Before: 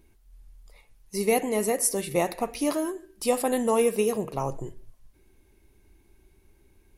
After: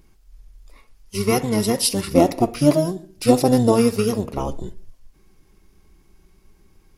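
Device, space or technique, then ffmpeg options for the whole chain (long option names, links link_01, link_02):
octave pedal: -filter_complex "[0:a]asettb=1/sr,asplit=3[link_01][link_02][link_03];[link_01]atrim=end=2.114[link_04];[link_02]atrim=start=2.11:end=3.72,asetpts=PTS-STARTPTS,afade=type=in:duration=0.004:curve=qsin,afade=type=out:start_time=1.606:duration=0.004:curve=qsin,equalizer=frequency=250:width_type=o:width=0.67:gain=3,equalizer=frequency=630:width_type=o:width=0.67:gain=9,equalizer=frequency=1600:width_type=o:width=0.67:gain=-8[link_05];[link_03]atrim=start=3.716[link_06];[link_04][link_05]acrossfade=duration=0.004:curve1=hsin:curve2=qsin[link_07];[link_07][link_06]acrossfade=duration=0.004:curve1=qsin:curve2=hsin,asplit=2[link_08][link_09];[link_09]asetrate=22050,aresample=44100,atempo=2,volume=0dB[link_10];[link_08][link_10]amix=inputs=2:normalize=0,volume=2dB"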